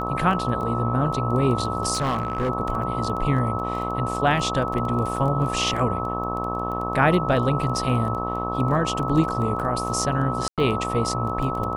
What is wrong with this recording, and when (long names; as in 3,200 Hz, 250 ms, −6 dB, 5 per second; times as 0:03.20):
mains buzz 60 Hz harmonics 20 −29 dBFS
surface crackle 11 per second −29 dBFS
whistle 1,300 Hz −28 dBFS
0:01.93–0:02.50: clipping −19.5 dBFS
0:05.16: drop-out 2.8 ms
0:10.48–0:10.58: drop-out 97 ms